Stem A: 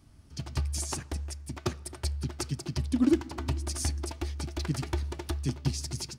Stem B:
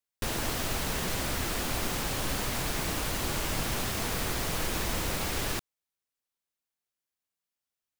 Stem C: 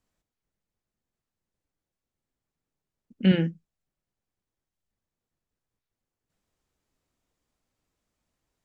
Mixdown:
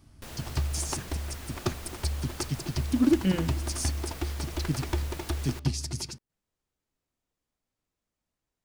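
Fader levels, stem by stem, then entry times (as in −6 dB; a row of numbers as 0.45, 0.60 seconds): +1.5, −12.0, −6.0 decibels; 0.00, 0.00, 0.00 seconds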